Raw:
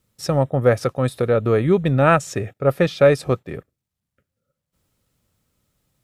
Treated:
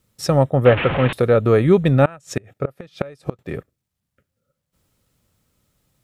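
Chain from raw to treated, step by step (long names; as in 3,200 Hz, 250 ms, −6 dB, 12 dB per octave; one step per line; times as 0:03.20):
0:00.65–0:01.13: linear delta modulator 16 kbit/s, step −19 dBFS
0:02.05–0:03.39: gate with flip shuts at −12 dBFS, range −27 dB
level +3 dB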